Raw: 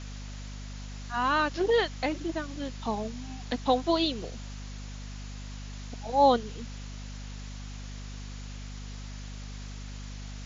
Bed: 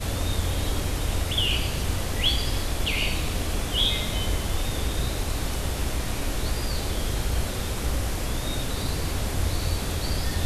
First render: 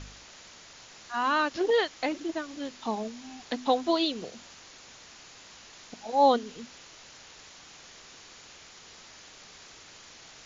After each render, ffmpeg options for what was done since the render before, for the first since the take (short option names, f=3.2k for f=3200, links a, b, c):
-af "bandreject=f=50:t=h:w=4,bandreject=f=100:t=h:w=4,bandreject=f=150:t=h:w=4,bandreject=f=200:t=h:w=4,bandreject=f=250:t=h:w=4"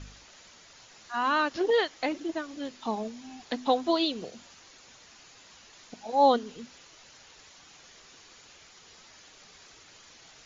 -af "afftdn=nr=6:nf=-51"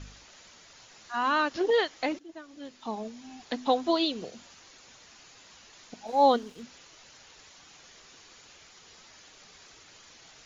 -filter_complex "[0:a]asettb=1/sr,asplit=3[a][b][c];[a]atrim=end=6.074[d];[b]atrim=start=6.07:end=6.63,asetpts=PTS-STARTPTS,afade=t=in:d=0.004:c=qsin,afade=t=out:st=0.556:d=0.004:c=qsin,aeval=exprs='sgn(val(0))*max(abs(val(0))-0.002,0)':c=same[e];[c]atrim=start=6.626[f];[d][e]acrossfade=d=0.004:c1=hsin:c2=qsin[g];[g][f]acrossfade=d=0.004:c1=qsin:c2=hsin,asplit=2[h][i];[h]atrim=end=2.19,asetpts=PTS-STARTPTS,afade=t=out:st=2.186:d=0.004:c=hsin:silence=0.133352[j];[i]atrim=start=2.19,asetpts=PTS-STARTPTS,afade=t=in:d=1.75:c=qsin:silence=0.133352[k];[j][k]concat=n=2:v=0:a=1"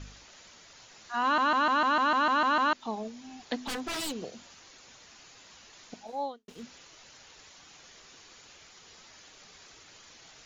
-filter_complex "[0:a]asettb=1/sr,asplit=3[a][b][c];[a]atrim=end=3.574[d];[b]atrim=start=3.57:end=4.15,asetpts=PTS-STARTPTS,afade=t=in:d=0.004:c=qsin,afade=t=out:st=0.576:d=0.004:c=qsin,aeval=exprs='0.0355*(abs(mod(val(0)/0.0355+3,4)-2)-1)':c=same[e];[c]atrim=start=4.146[f];[d][e]acrossfade=d=0.004:c1=hsin:c2=qsin[g];[g][f]acrossfade=d=0.004:c1=qsin:c2=hsin,asplit=12[h][i][j][k][l][m][n][o][p][q][r][s];[h]atrim=end=1.382[t];[i]atrim=start=1.228:end=1.382[u];[j]atrim=start=1.228:end=1.382[v];[k]atrim=start=1.228:end=1.382[w];[l]atrim=start=1.228:end=1.382[x];[m]atrim=start=1.228:end=1.382[y];[n]atrim=start=1.228:end=1.382[z];[o]atrim=start=1.228:end=1.382[aa];[p]atrim=start=1.228:end=1.382[ab];[q]atrim=start=1.228:end=1.382[ac];[r]atrim=start=2.728:end=6.48,asetpts=PTS-STARTPTS,afade=t=out:st=3.222:d=0.53:c=qua[ad];[s]atrim=start=6.48,asetpts=PTS-STARTPTS,afade=t=in:d=0.004:c=hsin[ae];[t][u]acrossfade=d=0.004:c1=hsin:c2=hsin[af];[af][v]acrossfade=d=0.004:c1=hsin:c2=hsin[ag];[ag][w]acrossfade=d=0.004:c1=hsin:c2=hsin[ah];[ah][x]acrossfade=d=0.004:c1=hsin:c2=hsin[ai];[ai][y]acrossfade=d=0.004:c1=hsin:c2=hsin[aj];[aj][z]acrossfade=d=0.004:c1=hsin:c2=hsin[ak];[ak][aa]acrossfade=d=0.004:c1=hsin:c2=hsin[al];[al][ab]acrossfade=d=0.004:c1=hsin:c2=hsin[am];[am][ac]acrossfade=d=0.004:c1=hsin:c2=hsin[an];[ad][ae]concat=n=2:v=0:a=1[ao];[an][ao]acrossfade=d=0.004:c1=hsin:c2=hsin"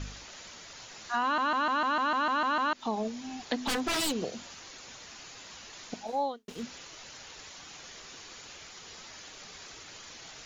-filter_complex "[0:a]asplit=2[a][b];[b]alimiter=level_in=1dB:limit=-24dB:level=0:latency=1:release=64,volume=-1dB,volume=0dB[c];[a][c]amix=inputs=2:normalize=0,acompressor=threshold=-27dB:ratio=2.5"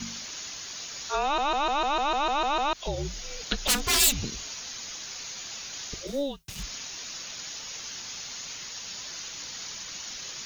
-af "crystalizer=i=4:c=0,afreqshift=-280"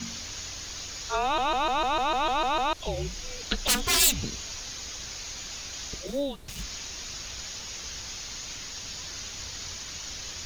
-filter_complex "[1:a]volume=-21.5dB[a];[0:a][a]amix=inputs=2:normalize=0"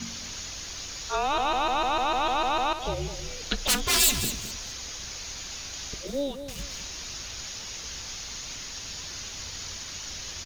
-af "aecho=1:1:210|420|630:0.316|0.0696|0.0153"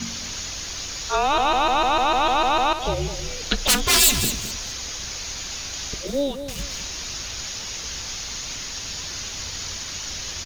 -af "volume=6dB,alimiter=limit=-3dB:level=0:latency=1"